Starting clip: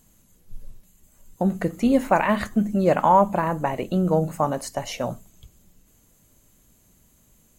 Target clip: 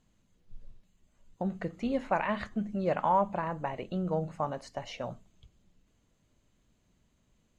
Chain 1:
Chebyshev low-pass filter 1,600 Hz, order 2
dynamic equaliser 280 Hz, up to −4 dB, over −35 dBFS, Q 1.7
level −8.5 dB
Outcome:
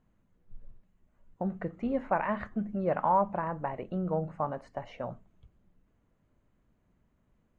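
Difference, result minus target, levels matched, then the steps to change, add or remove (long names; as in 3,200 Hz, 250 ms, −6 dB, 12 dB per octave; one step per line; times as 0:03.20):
4,000 Hz band −11.5 dB
change: Chebyshev low-pass filter 3,900 Hz, order 2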